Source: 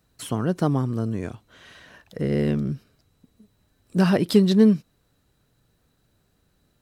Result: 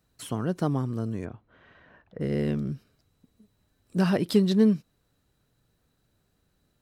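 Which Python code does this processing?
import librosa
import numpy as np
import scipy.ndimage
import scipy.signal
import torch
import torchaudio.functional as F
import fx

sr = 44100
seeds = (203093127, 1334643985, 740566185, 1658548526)

y = fx.lowpass(x, sr, hz=1700.0, slope=12, at=(1.24, 2.2), fade=0.02)
y = y * 10.0 ** (-4.5 / 20.0)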